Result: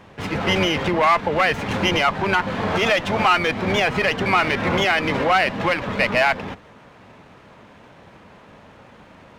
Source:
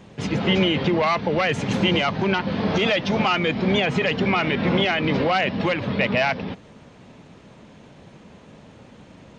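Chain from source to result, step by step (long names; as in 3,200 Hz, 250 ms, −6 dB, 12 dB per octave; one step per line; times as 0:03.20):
sub-octave generator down 1 octave, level −5 dB
parametric band 1,300 Hz +12 dB 2.8 octaves
windowed peak hold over 3 samples
level −5.5 dB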